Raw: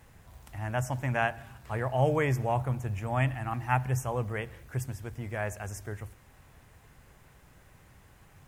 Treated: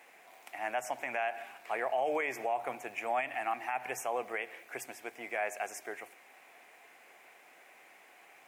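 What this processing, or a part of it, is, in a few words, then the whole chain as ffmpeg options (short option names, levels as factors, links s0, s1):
laptop speaker: -af "highpass=f=320:w=0.5412,highpass=f=320:w=1.3066,equalizer=f=720:t=o:w=0.3:g=10,equalizer=f=2300:t=o:w=0.58:g=12,alimiter=limit=0.0794:level=0:latency=1:release=101,volume=0.891"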